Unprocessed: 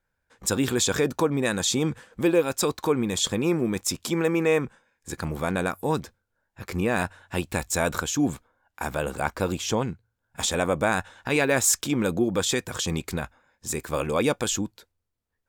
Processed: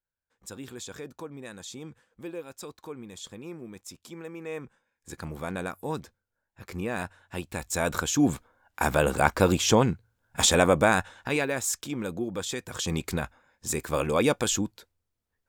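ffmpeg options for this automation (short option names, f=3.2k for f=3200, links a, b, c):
-af "volume=13dB,afade=t=in:st=4.4:d=0.75:silence=0.316228,afade=t=in:st=7.55:d=1.27:silence=0.251189,afade=t=out:st=10.51:d=1.04:silence=0.223872,afade=t=in:st=12.59:d=0.45:silence=0.398107"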